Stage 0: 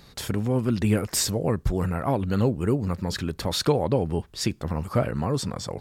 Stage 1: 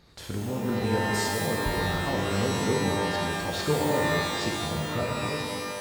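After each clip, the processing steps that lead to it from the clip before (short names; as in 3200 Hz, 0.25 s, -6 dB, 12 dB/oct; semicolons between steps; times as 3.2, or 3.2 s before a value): ending faded out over 0.91 s; high shelf 6900 Hz -8.5 dB; shimmer reverb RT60 1.6 s, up +12 st, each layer -2 dB, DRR -0.5 dB; gain -7.5 dB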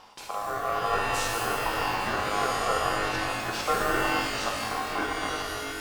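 reverse; upward compressor, threshold -32 dBFS; reverse; ring modulator 920 Hz; gain +2 dB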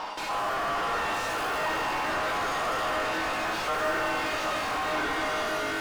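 overdrive pedal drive 38 dB, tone 1400 Hz, clips at -11.5 dBFS; resonator 310 Hz, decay 0.17 s, harmonics all, mix 70%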